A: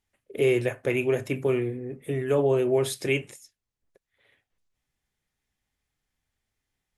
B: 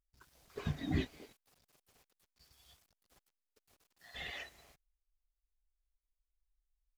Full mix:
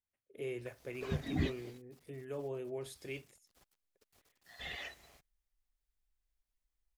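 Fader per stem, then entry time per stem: −18.5, +0.5 decibels; 0.00, 0.45 seconds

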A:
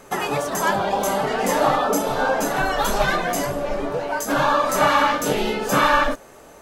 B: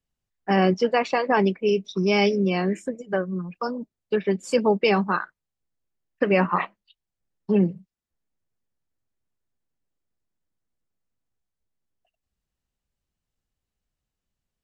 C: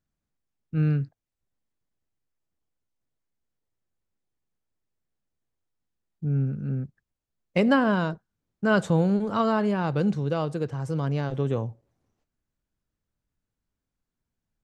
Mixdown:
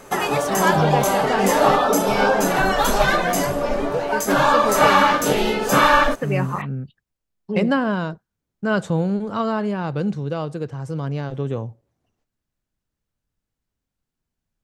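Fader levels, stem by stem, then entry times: +2.5, −4.5, +1.0 decibels; 0.00, 0.00, 0.00 seconds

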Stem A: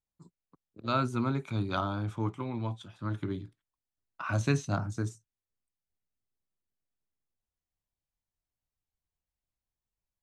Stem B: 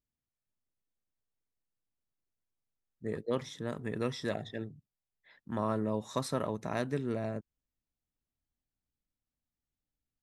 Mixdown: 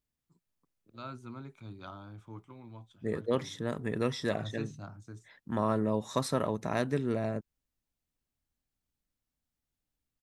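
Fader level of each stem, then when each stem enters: −14.5, +3.0 decibels; 0.10, 0.00 seconds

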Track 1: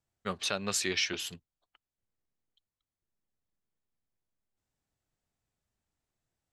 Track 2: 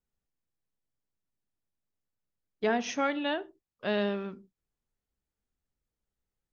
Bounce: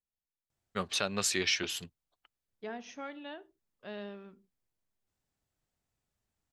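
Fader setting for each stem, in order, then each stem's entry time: +0.5, −13.5 decibels; 0.50, 0.00 seconds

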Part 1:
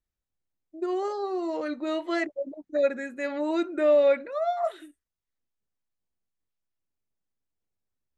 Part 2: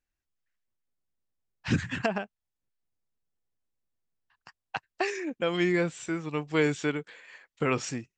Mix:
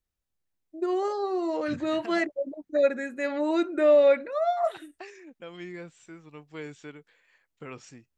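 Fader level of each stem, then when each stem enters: +1.5, −14.5 decibels; 0.00, 0.00 seconds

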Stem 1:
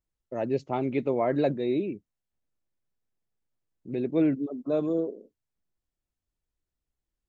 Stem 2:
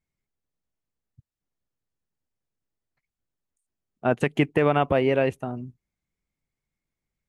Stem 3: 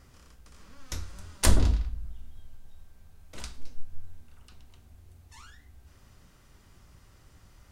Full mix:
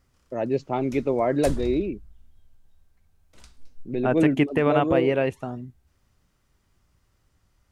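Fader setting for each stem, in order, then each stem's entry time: +3.0, −1.0, −10.5 decibels; 0.00, 0.00, 0.00 seconds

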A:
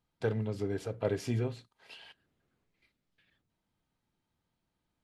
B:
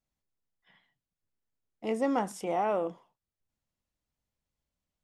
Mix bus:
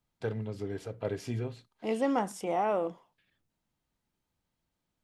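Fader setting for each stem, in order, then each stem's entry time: −2.5, 0.0 decibels; 0.00, 0.00 seconds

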